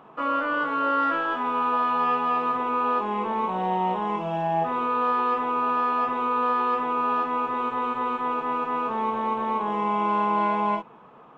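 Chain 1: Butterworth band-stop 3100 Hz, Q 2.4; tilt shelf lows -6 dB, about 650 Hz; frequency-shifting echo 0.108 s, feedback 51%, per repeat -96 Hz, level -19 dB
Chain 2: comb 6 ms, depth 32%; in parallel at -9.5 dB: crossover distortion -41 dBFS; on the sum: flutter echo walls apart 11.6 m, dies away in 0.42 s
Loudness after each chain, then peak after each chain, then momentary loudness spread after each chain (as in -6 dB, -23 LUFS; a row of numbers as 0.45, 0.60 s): -22.5, -22.0 LUFS; -11.0, -7.0 dBFS; 5, 5 LU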